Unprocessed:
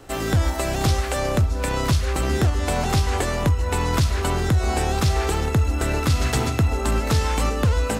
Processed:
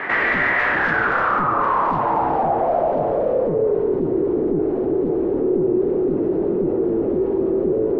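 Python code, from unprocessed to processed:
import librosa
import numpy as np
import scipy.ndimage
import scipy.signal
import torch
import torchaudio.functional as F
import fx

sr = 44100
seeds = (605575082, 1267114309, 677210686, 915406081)

p1 = np.abs(x)
p2 = fx.bandpass_edges(p1, sr, low_hz=280.0, high_hz=3200.0)
p3 = fx.echo_split(p2, sr, split_hz=700.0, low_ms=708, high_ms=221, feedback_pct=52, wet_db=-12)
p4 = fx.fold_sine(p3, sr, drive_db=16, ceiling_db=-15.0)
p5 = p3 + (p4 * 10.0 ** (-8.5 / 20.0))
p6 = fx.filter_sweep_lowpass(p5, sr, from_hz=1900.0, to_hz=380.0, start_s=0.57, end_s=4.03, q=7.0)
p7 = fx.env_flatten(p6, sr, amount_pct=50)
y = p7 * 10.0 ** (-4.0 / 20.0)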